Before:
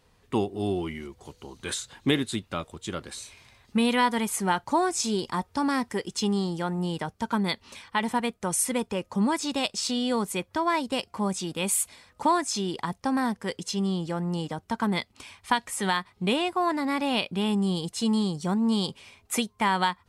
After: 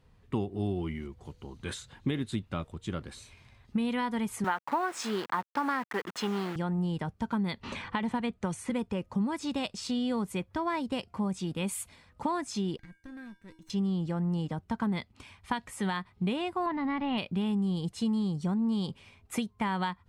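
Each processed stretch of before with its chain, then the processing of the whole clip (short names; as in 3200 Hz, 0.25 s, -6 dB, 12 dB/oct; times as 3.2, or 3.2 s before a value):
4.44–6.56 level-crossing sampler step -34.5 dBFS + HPF 300 Hz + bell 1400 Hz +11 dB 1.9 oct
7.63–8.7 LPF 7700 Hz + notch 5300 Hz + three-band squash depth 70%
12.77–13.7 minimum comb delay 0.49 ms + resonator 320 Hz, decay 0.43 s, harmonics odd, mix 90% + mismatched tape noise reduction encoder only
16.66–17.18 G.711 law mismatch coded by A + LPF 3600 Hz 24 dB/oct + comb 1 ms, depth 39%
whole clip: tone controls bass +9 dB, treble -7 dB; compressor, threshold -21 dBFS; gain -5 dB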